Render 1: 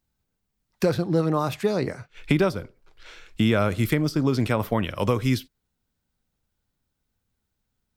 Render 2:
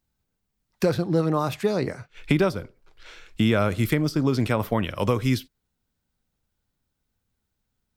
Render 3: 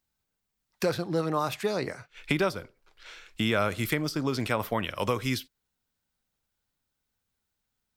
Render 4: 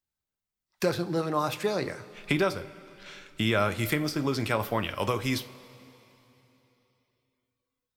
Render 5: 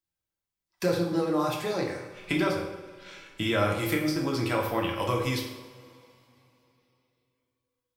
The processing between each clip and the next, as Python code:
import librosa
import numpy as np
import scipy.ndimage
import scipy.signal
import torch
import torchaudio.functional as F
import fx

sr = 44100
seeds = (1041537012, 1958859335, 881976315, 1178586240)

y1 = x
y2 = fx.low_shelf(y1, sr, hz=470.0, db=-9.5)
y3 = fx.rev_double_slope(y2, sr, seeds[0], early_s=0.26, late_s=3.4, knee_db=-18, drr_db=9.0)
y3 = fx.noise_reduce_blind(y3, sr, reduce_db=9)
y4 = fx.rev_fdn(y3, sr, rt60_s=0.98, lf_ratio=0.9, hf_ratio=0.7, size_ms=18.0, drr_db=-0.5)
y4 = y4 * librosa.db_to_amplitude(-3.5)